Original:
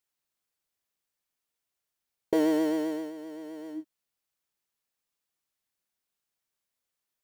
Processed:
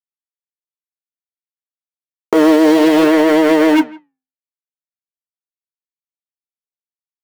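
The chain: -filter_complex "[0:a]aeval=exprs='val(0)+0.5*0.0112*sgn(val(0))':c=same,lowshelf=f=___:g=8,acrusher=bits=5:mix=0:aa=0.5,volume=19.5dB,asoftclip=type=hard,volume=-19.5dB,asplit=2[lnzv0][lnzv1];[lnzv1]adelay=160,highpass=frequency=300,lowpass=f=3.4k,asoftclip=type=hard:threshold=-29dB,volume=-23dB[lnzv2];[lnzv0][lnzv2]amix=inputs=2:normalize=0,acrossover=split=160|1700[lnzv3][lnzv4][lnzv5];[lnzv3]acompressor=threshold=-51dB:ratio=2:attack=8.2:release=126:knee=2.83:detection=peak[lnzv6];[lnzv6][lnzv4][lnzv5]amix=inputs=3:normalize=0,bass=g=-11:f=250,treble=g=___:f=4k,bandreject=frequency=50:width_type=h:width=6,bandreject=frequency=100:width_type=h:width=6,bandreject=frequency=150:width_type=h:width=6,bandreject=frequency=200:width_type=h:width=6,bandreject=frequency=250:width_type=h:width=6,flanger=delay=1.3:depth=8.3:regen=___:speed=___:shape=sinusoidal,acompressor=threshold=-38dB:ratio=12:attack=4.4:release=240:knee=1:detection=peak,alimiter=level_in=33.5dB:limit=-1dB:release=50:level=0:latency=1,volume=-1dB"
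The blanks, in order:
110, -8, -82, 0.59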